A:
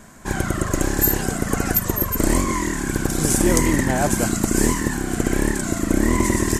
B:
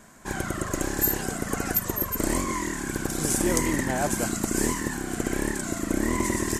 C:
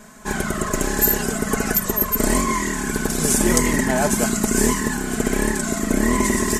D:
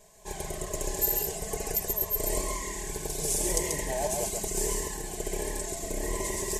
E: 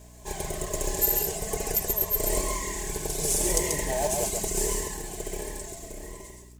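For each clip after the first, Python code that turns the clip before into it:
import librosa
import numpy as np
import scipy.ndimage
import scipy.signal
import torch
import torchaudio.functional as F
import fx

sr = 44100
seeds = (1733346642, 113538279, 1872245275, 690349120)

y1 = fx.low_shelf(x, sr, hz=180.0, db=-6.0)
y1 = y1 * 10.0 ** (-5.0 / 20.0)
y2 = y1 + 0.65 * np.pad(y1, (int(4.7 * sr / 1000.0), 0))[:len(y1)]
y2 = y2 * 10.0 ** (5.5 / 20.0)
y3 = fx.fixed_phaser(y2, sr, hz=570.0, stages=4)
y3 = y3 + 10.0 ** (-4.0 / 20.0) * np.pad(y3, (int(136 * sr / 1000.0), 0))[:len(y3)]
y3 = y3 * 10.0 ** (-9.0 / 20.0)
y4 = fx.fade_out_tail(y3, sr, length_s=2.14)
y4 = fx.add_hum(y4, sr, base_hz=60, snr_db=21)
y4 = fx.quant_float(y4, sr, bits=2)
y4 = y4 * 10.0 ** (3.0 / 20.0)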